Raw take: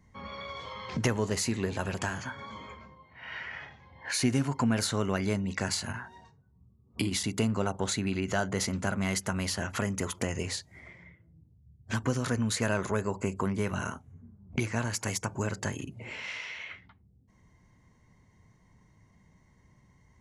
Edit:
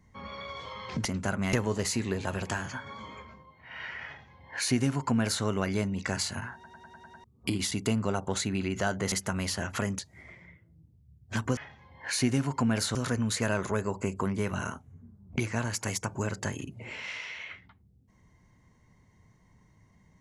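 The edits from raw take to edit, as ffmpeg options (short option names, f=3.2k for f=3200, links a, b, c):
-filter_complex "[0:a]asplit=14[a][b][c][d][e][f][g][h][i][j][k][l][m][n];[a]atrim=end=1.052[o];[b]atrim=start=8.638:end=9.122[p];[c]atrim=start=1.048:end=6.162[q];[d]atrim=start=6.058:end=6.162[r];[e]atrim=start=6.058:end=6.162[s];[f]atrim=start=6.058:end=6.162[t];[g]atrim=start=6.058:end=6.162[u];[h]atrim=start=6.058:end=6.162[v];[i]atrim=start=6.058:end=6.162[w];[j]atrim=start=6.758:end=8.642[x];[k]atrim=start=9.118:end=9.992[y];[l]atrim=start=10.568:end=12.152[z];[m]atrim=start=3.578:end=4.962[aa];[n]atrim=start=12.148[ab];[o][p]acrossfade=d=0.004:c1=hsin:c2=hsin[ac];[ac][q]acrossfade=d=0.004:c1=hsin:c2=hsin[ad];[ad][r]acrossfade=d=0.004:c1=hsin:c2=hsin[ae];[ae][s]acrossfade=d=0.004:c1=hsin:c2=hsin[af];[af][t]acrossfade=d=0.004:c1=hsin:c2=hsin[ag];[ag][u]acrossfade=d=0.004:c1=hsin:c2=hsin[ah];[ah][v]acrossfade=d=0.004:c1=hsin:c2=hsin[ai];[ai][w]acrossfade=d=0.004:c1=hsin:c2=hsin[aj];[aj][x]acrossfade=d=0.004:c1=hsin:c2=hsin[ak];[ak][y]acrossfade=d=0.004:c1=hsin:c2=hsin[al];[al][z]acrossfade=d=0.004:c1=hsin:c2=hsin[am];[am][aa]acrossfade=d=0.004:c1=hsin:c2=hsin[an];[an][ab]acrossfade=d=0.004:c1=hsin:c2=hsin"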